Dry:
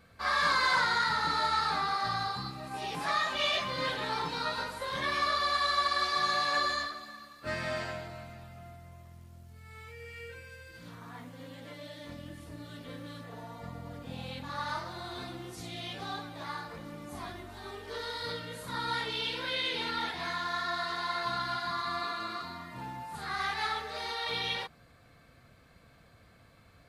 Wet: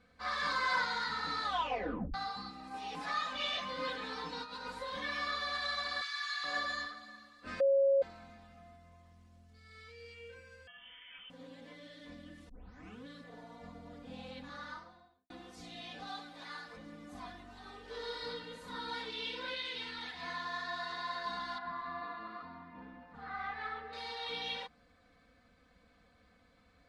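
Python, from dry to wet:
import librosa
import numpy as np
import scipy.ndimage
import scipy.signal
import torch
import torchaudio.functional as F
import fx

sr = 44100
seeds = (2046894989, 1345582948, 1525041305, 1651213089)

y = fx.over_compress(x, sr, threshold_db=-38.0, ratio=-1.0, at=(4.42, 4.82))
y = fx.highpass(y, sr, hz=1300.0, slope=24, at=(6.01, 6.44))
y = fx.peak_eq(y, sr, hz=4500.0, db=14.0, octaves=0.44, at=(9.54, 10.14))
y = fx.freq_invert(y, sr, carrier_hz=3300, at=(10.67, 11.3))
y = fx.studio_fade_out(y, sr, start_s=14.43, length_s=0.87)
y = fx.tilt_eq(y, sr, slope=1.5, at=(16.07, 16.77))
y = fx.reverb_throw(y, sr, start_s=17.8, length_s=0.41, rt60_s=2.5, drr_db=1.0)
y = fx.peak_eq(y, sr, hz=410.0, db=-7.0, octaves=2.5, at=(19.54, 20.23))
y = fx.lowpass(y, sr, hz=1900.0, slope=12, at=(21.58, 23.93))
y = fx.edit(y, sr, fx.tape_stop(start_s=1.43, length_s=0.71),
    fx.bleep(start_s=7.6, length_s=0.42, hz=549.0, db=-19.0),
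    fx.tape_start(start_s=12.49, length_s=0.58), tone=tone)
y = scipy.signal.sosfilt(scipy.signal.butter(2, 6800.0, 'lowpass', fs=sr, output='sos'), y)
y = y + 0.86 * np.pad(y, (int(4.0 * sr / 1000.0), 0))[:len(y)]
y = y * 10.0 ** (-8.5 / 20.0)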